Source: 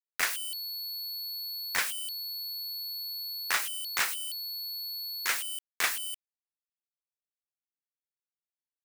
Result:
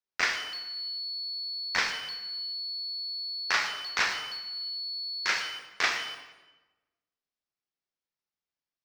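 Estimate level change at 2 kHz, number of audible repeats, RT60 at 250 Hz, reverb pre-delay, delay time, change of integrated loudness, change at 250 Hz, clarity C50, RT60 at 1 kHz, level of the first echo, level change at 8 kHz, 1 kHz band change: +4.0 dB, none, 1.3 s, 17 ms, none, +1.5 dB, +5.5 dB, 6.0 dB, 1.1 s, none, -6.5 dB, +4.5 dB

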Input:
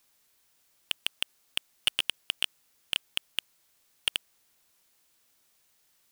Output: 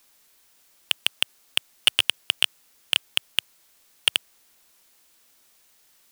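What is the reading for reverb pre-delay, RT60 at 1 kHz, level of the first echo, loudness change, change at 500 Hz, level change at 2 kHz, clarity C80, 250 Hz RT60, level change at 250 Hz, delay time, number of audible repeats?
none, none, none, +8.0 dB, +8.0 dB, +8.0 dB, none, none, +7.5 dB, none, none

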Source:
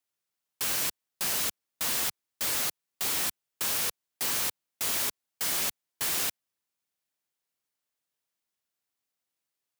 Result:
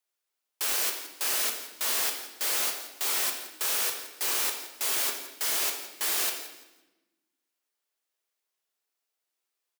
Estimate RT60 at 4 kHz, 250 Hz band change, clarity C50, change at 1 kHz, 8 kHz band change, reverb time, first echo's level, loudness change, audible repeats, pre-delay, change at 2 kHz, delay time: 0.95 s, -3.5 dB, 6.0 dB, +2.0 dB, +1.5 dB, 1.0 s, -14.5 dB, +1.5 dB, 2, 5 ms, +2.0 dB, 0.169 s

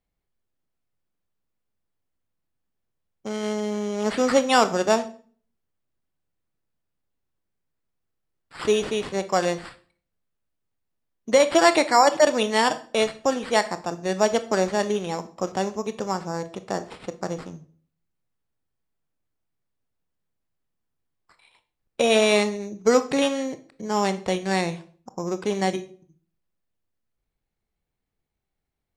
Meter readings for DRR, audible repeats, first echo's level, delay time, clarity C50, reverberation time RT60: 11.0 dB, none, none, none, 15.0 dB, 0.45 s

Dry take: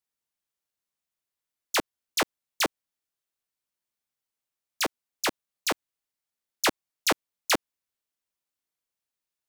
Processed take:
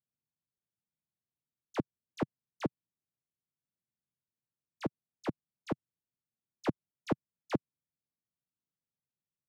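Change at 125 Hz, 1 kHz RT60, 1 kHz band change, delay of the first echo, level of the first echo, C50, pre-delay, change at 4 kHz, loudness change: +7.0 dB, none, -12.5 dB, none, none, none, none, -24.5 dB, -10.5 dB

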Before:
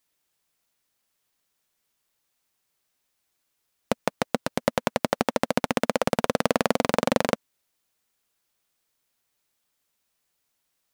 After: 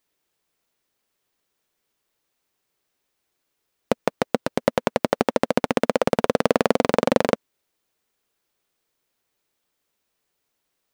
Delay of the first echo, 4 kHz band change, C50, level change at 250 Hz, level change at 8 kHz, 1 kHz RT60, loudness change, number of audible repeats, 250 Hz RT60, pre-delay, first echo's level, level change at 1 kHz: none, 0.0 dB, none, +3.5 dB, -2.0 dB, none, +3.5 dB, none, none, none, none, +2.0 dB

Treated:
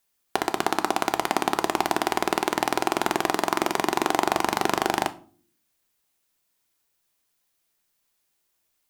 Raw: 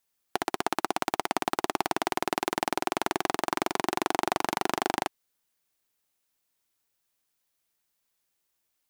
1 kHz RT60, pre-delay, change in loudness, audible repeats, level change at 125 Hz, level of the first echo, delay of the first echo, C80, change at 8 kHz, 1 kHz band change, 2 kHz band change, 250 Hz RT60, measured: 0.40 s, 3 ms, +4.5 dB, none, +5.0 dB, none, none, 23.0 dB, +4.5 dB, +4.5 dB, +4.5 dB, 0.75 s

